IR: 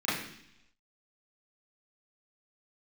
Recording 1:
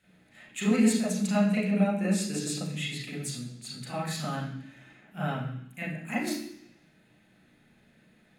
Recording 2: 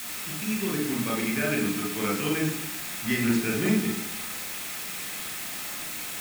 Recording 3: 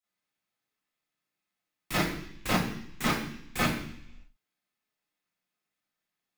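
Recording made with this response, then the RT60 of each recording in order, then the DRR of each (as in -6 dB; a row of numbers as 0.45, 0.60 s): 3; 0.70, 0.70, 0.70 s; -6.5, -1.0, -12.0 dB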